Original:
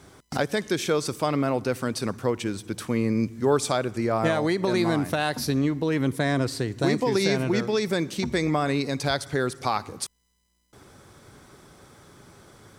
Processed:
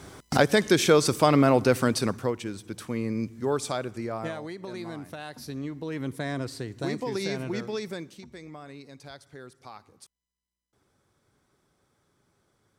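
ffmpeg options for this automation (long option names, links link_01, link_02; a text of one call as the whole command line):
ffmpeg -i in.wav -af "volume=11.5dB,afade=type=out:start_time=1.8:duration=0.58:silence=0.298538,afade=type=out:start_time=3.84:duration=0.63:silence=0.375837,afade=type=in:start_time=5.31:duration=0.84:silence=0.473151,afade=type=out:start_time=7.75:duration=0.49:silence=0.251189" out.wav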